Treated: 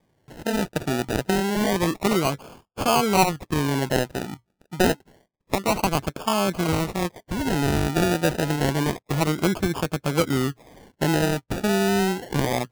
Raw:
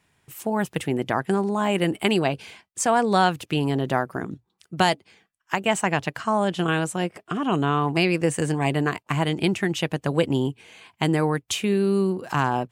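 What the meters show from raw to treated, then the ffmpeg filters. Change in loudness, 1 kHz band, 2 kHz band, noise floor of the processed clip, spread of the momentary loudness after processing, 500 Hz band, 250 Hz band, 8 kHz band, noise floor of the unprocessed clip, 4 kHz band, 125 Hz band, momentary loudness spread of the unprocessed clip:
0.0 dB, −1.0 dB, −1.0 dB, −73 dBFS, 8 LU, 0.0 dB, 0.0 dB, +2.0 dB, −73 dBFS, +0.5 dB, +0.5 dB, 8 LU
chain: -af "acrusher=samples=32:mix=1:aa=0.000001:lfo=1:lforange=19.2:lforate=0.28"

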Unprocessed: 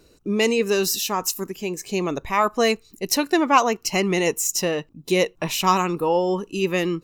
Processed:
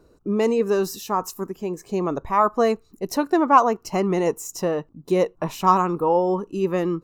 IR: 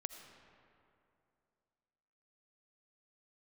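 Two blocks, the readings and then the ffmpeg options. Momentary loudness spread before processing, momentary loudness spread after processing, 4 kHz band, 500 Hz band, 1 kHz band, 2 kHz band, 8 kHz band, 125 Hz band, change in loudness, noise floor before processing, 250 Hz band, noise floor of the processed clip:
8 LU, 10 LU, −12.0 dB, +0.5 dB, +2.0 dB, −7.5 dB, −11.0 dB, 0.0 dB, −0.5 dB, −56 dBFS, 0.0 dB, −57 dBFS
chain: -af "highshelf=frequency=1700:width_type=q:width=1.5:gain=-10.5"

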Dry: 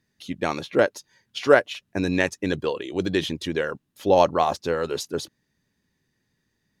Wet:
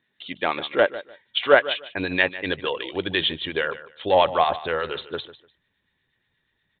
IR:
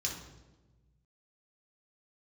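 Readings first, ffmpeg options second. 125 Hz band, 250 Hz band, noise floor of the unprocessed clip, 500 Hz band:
−6.0 dB, −5.5 dB, −75 dBFS, −0.5 dB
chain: -filter_complex "[0:a]aemphasis=mode=production:type=riaa,bandreject=frequency=2600:width=24,asubboost=boost=6:cutoff=90,asplit=2[link_01][link_02];[link_02]asoftclip=type=hard:threshold=-17dB,volume=-8dB[link_03];[link_01][link_03]amix=inputs=2:normalize=0,acrossover=split=1200[link_04][link_05];[link_04]aeval=exprs='val(0)*(1-0.5/2+0.5/2*cos(2*PI*8.4*n/s))':channel_layout=same[link_06];[link_05]aeval=exprs='val(0)*(1-0.5/2-0.5/2*cos(2*PI*8.4*n/s))':channel_layout=same[link_07];[link_06][link_07]amix=inputs=2:normalize=0,asplit=2[link_08][link_09];[link_09]aecho=0:1:149|298:0.168|0.0353[link_10];[link_08][link_10]amix=inputs=2:normalize=0,aresample=8000,aresample=44100,volume=2.5dB"

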